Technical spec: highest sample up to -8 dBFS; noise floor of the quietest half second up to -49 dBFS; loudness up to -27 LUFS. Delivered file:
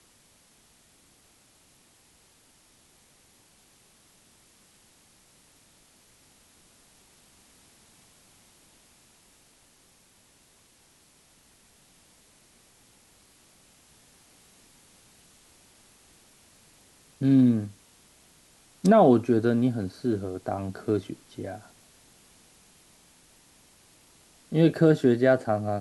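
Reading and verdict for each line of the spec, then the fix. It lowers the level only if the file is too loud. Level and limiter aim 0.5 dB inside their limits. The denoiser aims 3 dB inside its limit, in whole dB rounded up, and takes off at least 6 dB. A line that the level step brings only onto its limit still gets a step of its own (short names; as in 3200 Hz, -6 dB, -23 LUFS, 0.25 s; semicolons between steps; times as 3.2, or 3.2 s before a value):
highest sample -7.5 dBFS: fail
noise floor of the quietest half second -61 dBFS: OK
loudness -24.0 LUFS: fail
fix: gain -3.5 dB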